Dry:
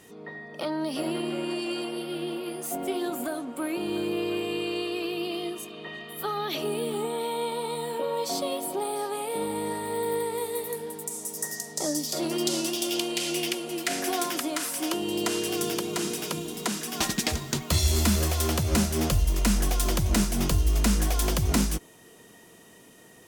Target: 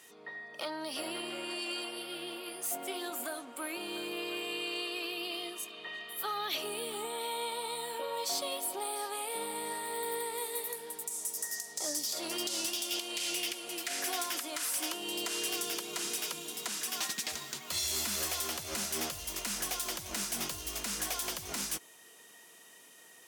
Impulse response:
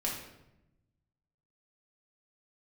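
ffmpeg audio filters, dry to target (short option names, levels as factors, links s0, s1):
-af "highpass=f=1400:p=1,alimiter=limit=0.0841:level=0:latency=1:release=155,asoftclip=type=hard:threshold=0.0422"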